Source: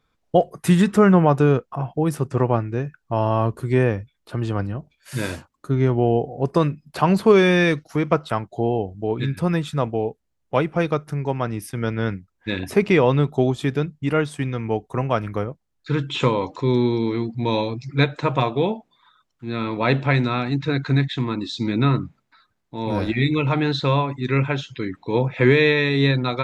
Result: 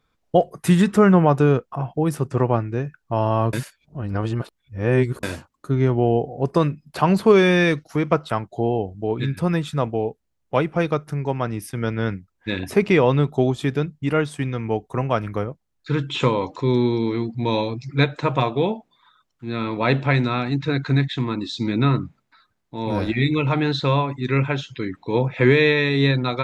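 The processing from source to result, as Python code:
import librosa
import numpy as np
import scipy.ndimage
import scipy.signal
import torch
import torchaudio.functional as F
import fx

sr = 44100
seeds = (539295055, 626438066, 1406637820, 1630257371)

y = fx.edit(x, sr, fx.reverse_span(start_s=3.53, length_s=1.7), tone=tone)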